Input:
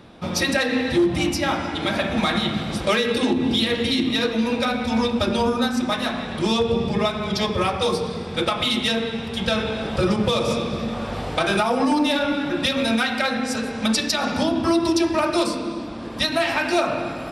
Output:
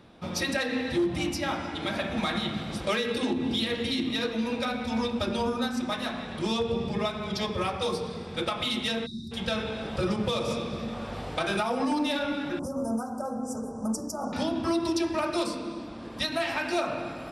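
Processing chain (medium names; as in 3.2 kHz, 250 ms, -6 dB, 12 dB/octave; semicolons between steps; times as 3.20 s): 9.06–9.32 s: spectral selection erased 390–3600 Hz; 12.59–14.33 s: inverse Chebyshev band-stop 1.9–3.9 kHz, stop band 50 dB; trim -7.5 dB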